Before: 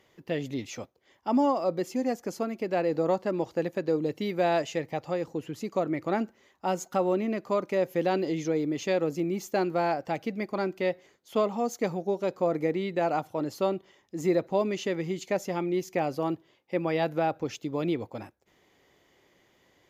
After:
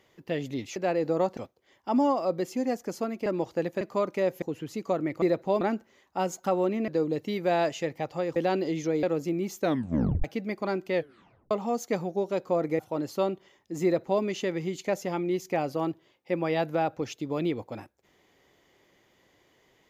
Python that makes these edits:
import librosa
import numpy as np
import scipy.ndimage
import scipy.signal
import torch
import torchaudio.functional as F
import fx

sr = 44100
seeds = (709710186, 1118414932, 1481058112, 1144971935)

y = fx.edit(x, sr, fx.move(start_s=2.65, length_s=0.61, to_s=0.76),
    fx.swap(start_s=3.81, length_s=1.48, other_s=7.36, other_length_s=0.61),
    fx.cut(start_s=8.64, length_s=0.3),
    fx.tape_stop(start_s=9.51, length_s=0.64),
    fx.tape_stop(start_s=10.86, length_s=0.56),
    fx.cut(start_s=12.7, length_s=0.52),
    fx.duplicate(start_s=14.27, length_s=0.39, to_s=6.09), tone=tone)